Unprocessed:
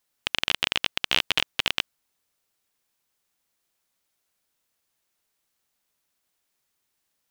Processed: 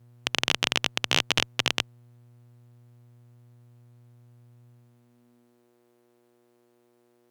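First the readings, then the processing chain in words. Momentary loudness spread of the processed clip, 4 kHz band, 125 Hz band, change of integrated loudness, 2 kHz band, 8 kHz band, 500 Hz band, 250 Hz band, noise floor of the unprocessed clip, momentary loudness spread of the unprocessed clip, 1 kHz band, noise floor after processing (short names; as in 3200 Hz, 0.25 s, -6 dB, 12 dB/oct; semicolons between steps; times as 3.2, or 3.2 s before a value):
6 LU, -0.5 dB, +7.5 dB, 0.0 dB, -0.5 dB, +5.5 dB, +4.0 dB, +6.0 dB, -77 dBFS, 6 LU, +2.0 dB, -66 dBFS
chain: buzz 120 Hz, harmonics 39, -60 dBFS -8 dB/oct; high-pass sweep 110 Hz -> 360 Hz, 4.6–5.72; added harmonics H 2 -12 dB, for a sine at -3 dBFS; gain -1.5 dB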